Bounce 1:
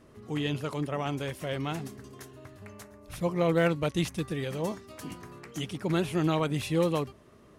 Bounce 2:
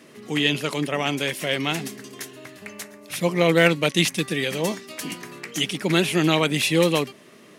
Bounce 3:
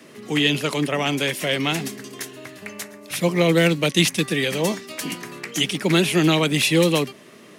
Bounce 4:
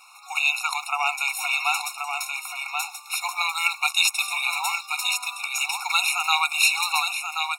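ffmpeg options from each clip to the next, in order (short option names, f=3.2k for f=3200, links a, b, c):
-af "highpass=f=160:w=0.5412,highpass=f=160:w=1.3066,highshelf=f=1.6k:t=q:w=1.5:g=6.5,volume=7.5dB"
-filter_complex "[0:a]acrossover=split=430|3000[a][b][c];[b]acompressor=threshold=-24dB:ratio=6[d];[a][d][c]amix=inputs=3:normalize=0,acrossover=split=160|1900[e][f][g];[e]acrusher=bits=4:mode=log:mix=0:aa=0.000001[h];[h][f][g]amix=inputs=3:normalize=0,volume=3dB"
-af "aecho=1:1:1081:0.531,afftfilt=real='re*eq(mod(floor(b*sr/1024/720),2),1)':imag='im*eq(mod(floor(b*sr/1024/720),2),1)':win_size=1024:overlap=0.75,volume=4dB"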